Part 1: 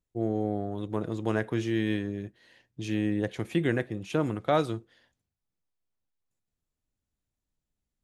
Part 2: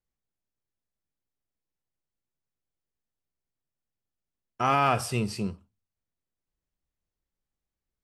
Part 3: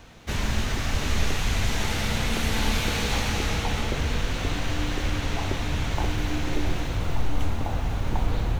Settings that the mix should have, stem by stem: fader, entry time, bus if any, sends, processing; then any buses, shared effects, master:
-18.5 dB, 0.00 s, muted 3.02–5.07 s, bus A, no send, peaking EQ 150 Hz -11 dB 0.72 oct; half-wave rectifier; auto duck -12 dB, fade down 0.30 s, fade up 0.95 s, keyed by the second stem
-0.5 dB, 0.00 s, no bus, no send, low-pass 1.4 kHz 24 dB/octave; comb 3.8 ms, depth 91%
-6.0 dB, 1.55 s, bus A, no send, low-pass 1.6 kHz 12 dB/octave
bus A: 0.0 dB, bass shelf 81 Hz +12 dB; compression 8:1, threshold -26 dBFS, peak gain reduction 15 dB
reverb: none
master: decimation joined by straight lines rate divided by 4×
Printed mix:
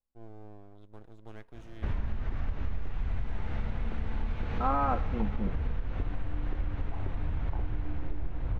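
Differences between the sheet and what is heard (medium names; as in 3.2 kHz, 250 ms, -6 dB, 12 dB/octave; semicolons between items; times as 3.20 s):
stem 2 -0.5 dB -> -7.0 dB; master: missing decimation joined by straight lines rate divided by 4×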